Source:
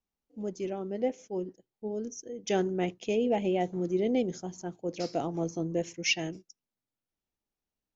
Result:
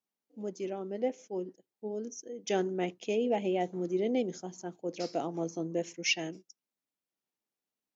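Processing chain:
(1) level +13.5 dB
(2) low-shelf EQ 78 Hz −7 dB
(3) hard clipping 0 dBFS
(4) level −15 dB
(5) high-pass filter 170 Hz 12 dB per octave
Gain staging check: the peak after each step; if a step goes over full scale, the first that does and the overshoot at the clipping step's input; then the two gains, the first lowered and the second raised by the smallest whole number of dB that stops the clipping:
−2.0, −2.0, −2.0, −17.0, −17.0 dBFS
no step passes full scale

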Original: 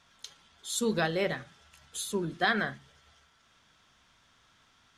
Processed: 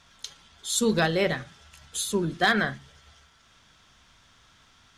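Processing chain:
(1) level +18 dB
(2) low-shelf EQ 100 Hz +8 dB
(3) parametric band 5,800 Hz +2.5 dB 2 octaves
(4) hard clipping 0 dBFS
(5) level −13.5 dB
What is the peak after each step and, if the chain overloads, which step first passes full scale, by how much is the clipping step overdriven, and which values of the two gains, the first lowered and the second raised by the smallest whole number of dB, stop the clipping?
+4.5, +4.0, +5.0, 0.0, −13.5 dBFS
step 1, 5.0 dB
step 1 +13 dB, step 5 −8.5 dB

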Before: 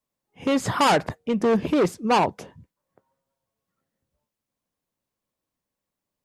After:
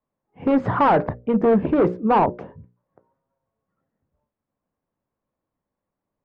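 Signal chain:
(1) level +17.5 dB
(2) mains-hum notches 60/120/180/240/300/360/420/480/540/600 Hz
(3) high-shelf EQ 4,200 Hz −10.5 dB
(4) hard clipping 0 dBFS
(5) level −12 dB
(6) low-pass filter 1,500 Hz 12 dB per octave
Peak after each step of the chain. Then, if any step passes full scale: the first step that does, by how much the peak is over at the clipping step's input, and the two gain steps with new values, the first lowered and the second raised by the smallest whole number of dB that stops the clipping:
+8.5, +8.5, +7.0, 0.0, −12.0, −11.5 dBFS
step 1, 7.0 dB
step 1 +10.5 dB, step 5 −5 dB

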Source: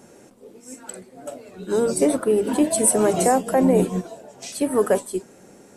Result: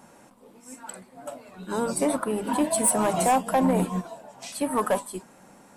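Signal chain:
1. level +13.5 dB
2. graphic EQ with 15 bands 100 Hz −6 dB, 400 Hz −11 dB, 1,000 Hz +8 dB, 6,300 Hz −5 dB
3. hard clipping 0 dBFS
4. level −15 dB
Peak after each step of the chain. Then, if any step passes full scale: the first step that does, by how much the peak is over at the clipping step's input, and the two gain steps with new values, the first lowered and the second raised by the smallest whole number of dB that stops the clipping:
+8.5, +8.0, 0.0, −15.0 dBFS
step 1, 8.0 dB
step 1 +5.5 dB, step 4 −7 dB

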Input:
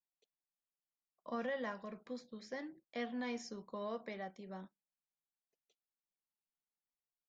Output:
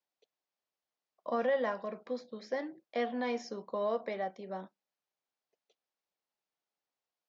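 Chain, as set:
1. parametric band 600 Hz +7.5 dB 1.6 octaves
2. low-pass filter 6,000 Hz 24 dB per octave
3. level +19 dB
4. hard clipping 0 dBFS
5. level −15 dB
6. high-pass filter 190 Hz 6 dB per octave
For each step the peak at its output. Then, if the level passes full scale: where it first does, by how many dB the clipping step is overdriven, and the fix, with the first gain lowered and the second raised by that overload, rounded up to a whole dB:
−25.0, −25.0, −6.0, −6.0, −21.0, −21.0 dBFS
no step passes full scale

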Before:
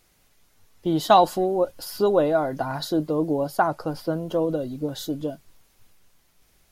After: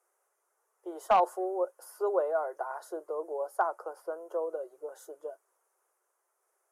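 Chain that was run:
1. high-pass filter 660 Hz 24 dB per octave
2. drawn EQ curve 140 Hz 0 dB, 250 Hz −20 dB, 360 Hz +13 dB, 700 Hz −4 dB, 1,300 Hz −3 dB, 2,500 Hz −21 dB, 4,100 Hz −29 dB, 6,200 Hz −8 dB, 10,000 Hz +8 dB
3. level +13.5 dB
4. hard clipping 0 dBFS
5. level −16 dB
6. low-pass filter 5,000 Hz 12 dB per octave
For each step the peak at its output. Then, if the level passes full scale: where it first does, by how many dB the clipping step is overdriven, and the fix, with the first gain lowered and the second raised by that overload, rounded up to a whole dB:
−5.0, −8.0, +5.5, 0.0, −16.0, −15.5 dBFS
step 3, 5.5 dB
step 3 +7.5 dB, step 5 −10 dB

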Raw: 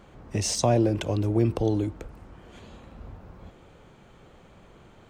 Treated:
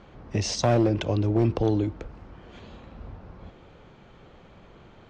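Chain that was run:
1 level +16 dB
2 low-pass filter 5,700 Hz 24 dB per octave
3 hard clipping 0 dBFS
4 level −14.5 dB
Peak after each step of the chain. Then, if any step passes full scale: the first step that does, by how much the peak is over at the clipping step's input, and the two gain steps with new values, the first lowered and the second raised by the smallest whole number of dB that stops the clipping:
+7.0, +7.0, 0.0, −14.5 dBFS
step 1, 7.0 dB
step 1 +9 dB, step 4 −7.5 dB

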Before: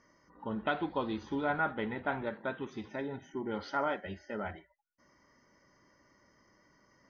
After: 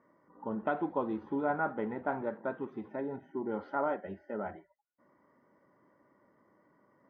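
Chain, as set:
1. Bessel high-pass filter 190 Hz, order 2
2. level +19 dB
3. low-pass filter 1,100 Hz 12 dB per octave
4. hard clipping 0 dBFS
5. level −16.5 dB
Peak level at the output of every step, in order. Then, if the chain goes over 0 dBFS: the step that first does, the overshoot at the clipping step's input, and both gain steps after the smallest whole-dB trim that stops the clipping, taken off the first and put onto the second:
−19.5, −0.5, −2.5, −2.5, −19.0 dBFS
no step passes full scale

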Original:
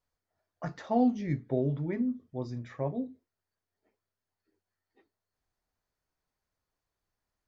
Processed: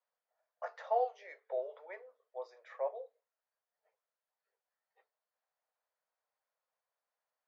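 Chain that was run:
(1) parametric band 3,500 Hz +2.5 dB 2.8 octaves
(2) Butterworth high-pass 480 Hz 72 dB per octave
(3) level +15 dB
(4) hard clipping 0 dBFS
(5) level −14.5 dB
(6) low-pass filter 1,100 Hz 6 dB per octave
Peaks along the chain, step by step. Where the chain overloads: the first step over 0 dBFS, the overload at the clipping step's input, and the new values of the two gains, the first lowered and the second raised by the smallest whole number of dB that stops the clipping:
−15.0, −19.5, −4.5, −4.5, −19.0, −20.5 dBFS
no step passes full scale

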